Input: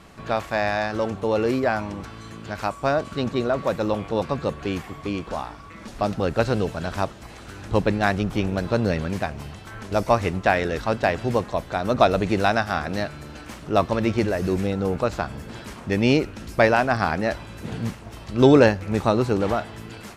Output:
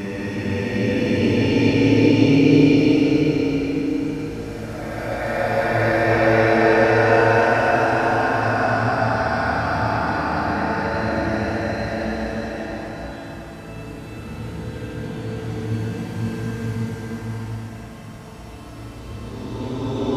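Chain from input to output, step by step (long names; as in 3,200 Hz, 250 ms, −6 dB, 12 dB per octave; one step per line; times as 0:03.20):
extreme stretch with random phases 8.1×, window 0.50 s, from 0:15.85
echo with a time of its own for lows and highs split 470 Hz, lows 298 ms, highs 556 ms, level −14.5 dB
feedback delay network reverb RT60 3.3 s, high-frequency decay 0.35×, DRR −1.5 dB
level −3 dB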